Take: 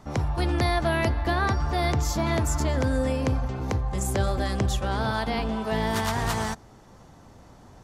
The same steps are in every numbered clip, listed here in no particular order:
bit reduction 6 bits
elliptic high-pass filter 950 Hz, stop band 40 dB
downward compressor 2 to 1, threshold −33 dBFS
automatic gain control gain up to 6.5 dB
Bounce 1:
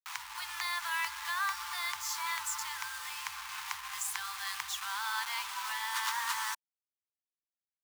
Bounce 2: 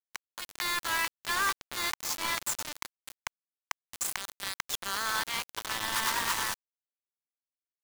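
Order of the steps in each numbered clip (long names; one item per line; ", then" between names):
bit reduction, then automatic gain control, then downward compressor, then elliptic high-pass filter
downward compressor, then elliptic high-pass filter, then bit reduction, then automatic gain control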